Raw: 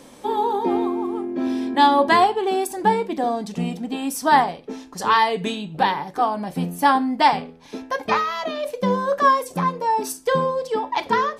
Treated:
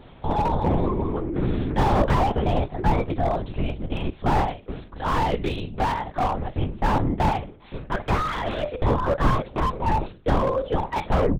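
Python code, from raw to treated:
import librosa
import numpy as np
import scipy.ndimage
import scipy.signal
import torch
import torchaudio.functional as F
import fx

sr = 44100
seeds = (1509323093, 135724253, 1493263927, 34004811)

y = fx.tape_stop_end(x, sr, length_s=0.31)
y = fx.lpc_vocoder(y, sr, seeds[0], excitation='whisper', order=8)
y = fx.slew_limit(y, sr, full_power_hz=80.0)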